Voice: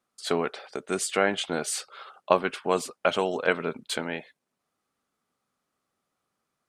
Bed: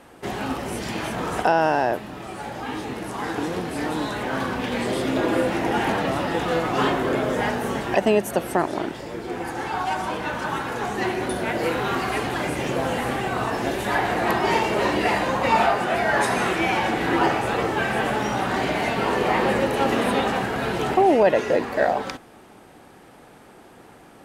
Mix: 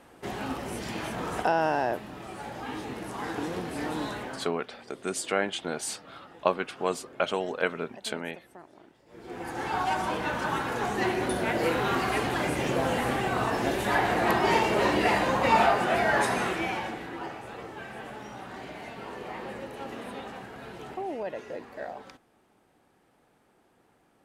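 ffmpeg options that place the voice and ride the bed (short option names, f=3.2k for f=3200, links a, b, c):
-filter_complex "[0:a]adelay=4150,volume=-3.5dB[a];[1:a]volume=19dB,afade=t=out:st=4.09:d=0.42:silence=0.0841395,afade=t=in:st=9.06:d=0.68:silence=0.0562341,afade=t=out:st=16:d=1.11:silence=0.177828[b];[a][b]amix=inputs=2:normalize=0"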